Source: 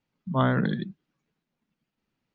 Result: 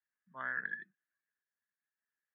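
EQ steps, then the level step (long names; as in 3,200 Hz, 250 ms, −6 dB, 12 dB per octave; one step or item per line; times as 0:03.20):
resonant band-pass 1,700 Hz, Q 16
high-frequency loss of the air 360 metres
+8.0 dB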